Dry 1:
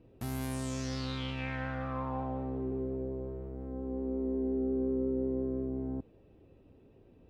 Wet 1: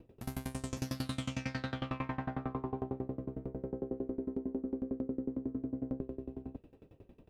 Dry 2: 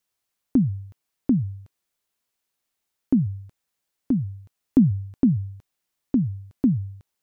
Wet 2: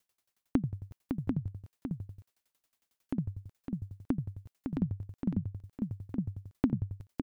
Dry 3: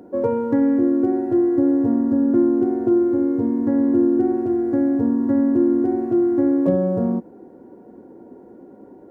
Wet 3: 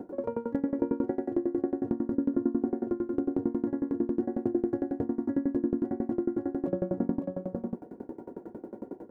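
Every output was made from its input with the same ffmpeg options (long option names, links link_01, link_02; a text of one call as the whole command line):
ffmpeg -i in.wav -af "acompressor=threshold=-39dB:ratio=2,aecho=1:1:557:0.668,aeval=exprs='val(0)*pow(10,-24*if(lt(mod(11*n/s,1),2*abs(11)/1000),1-mod(11*n/s,1)/(2*abs(11)/1000),(mod(11*n/s,1)-2*abs(11)/1000)/(1-2*abs(11)/1000))/20)':channel_layout=same,volume=7dB" out.wav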